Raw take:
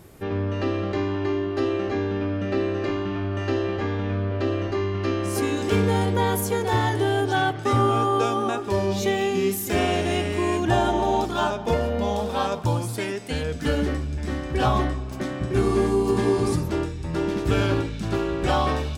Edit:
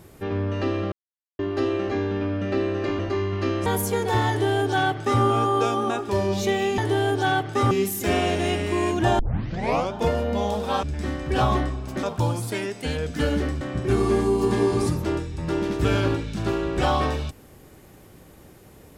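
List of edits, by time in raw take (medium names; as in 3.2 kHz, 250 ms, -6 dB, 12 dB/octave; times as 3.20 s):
0.92–1.39 s: mute
2.99–4.61 s: delete
5.28–6.25 s: delete
6.88–7.81 s: copy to 9.37 s
10.85 s: tape start 0.74 s
14.07–15.27 s: move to 12.49 s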